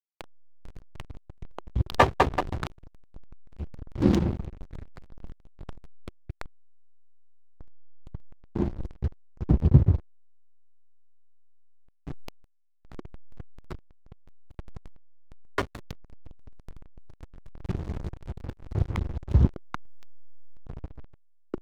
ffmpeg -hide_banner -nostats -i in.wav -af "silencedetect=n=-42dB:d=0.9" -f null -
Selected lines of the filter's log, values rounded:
silence_start: 6.46
silence_end: 7.61 | silence_duration: 1.15
silence_start: 10.00
silence_end: 12.07 | silence_duration: 2.07